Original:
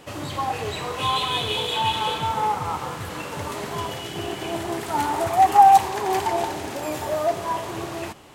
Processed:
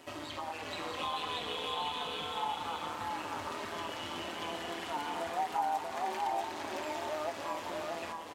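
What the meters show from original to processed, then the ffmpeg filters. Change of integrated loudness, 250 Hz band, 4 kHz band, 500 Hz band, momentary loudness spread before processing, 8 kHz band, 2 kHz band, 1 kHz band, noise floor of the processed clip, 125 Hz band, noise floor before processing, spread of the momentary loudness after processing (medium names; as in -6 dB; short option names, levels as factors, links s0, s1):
-14.0 dB, -12.5 dB, -11.0 dB, -12.0 dB, 14 LU, -13.5 dB, -9.0 dB, -15.5 dB, -43 dBFS, -20.0 dB, -34 dBFS, 5 LU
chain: -filter_complex "[0:a]tremolo=f=160:d=0.75,acrossover=split=900|5800[s0][s1][s2];[s0]acompressor=threshold=0.0141:ratio=4[s3];[s1]acompressor=threshold=0.0178:ratio=4[s4];[s2]acompressor=threshold=0.00126:ratio=4[s5];[s3][s4][s5]amix=inputs=3:normalize=0,flanger=delay=3.1:depth=1.1:regen=-32:speed=0.3:shape=sinusoidal,highpass=f=170:p=1,asplit=2[s6][s7];[s7]aecho=0:1:637:0.708[s8];[s6][s8]amix=inputs=2:normalize=0"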